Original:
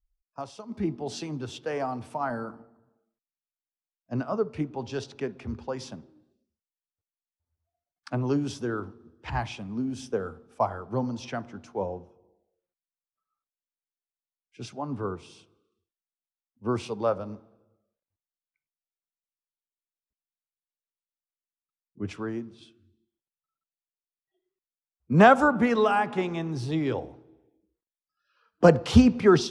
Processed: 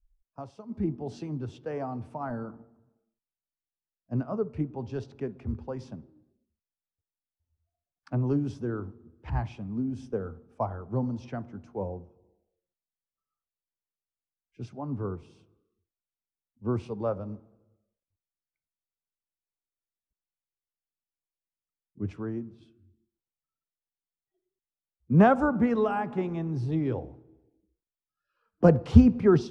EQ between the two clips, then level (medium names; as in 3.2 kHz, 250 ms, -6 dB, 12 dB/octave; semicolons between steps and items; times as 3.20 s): tilt EQ -3 dB/octave; peaking EQ 3.5 kHz -2.5 dB 0.43 oct; -6.5 dB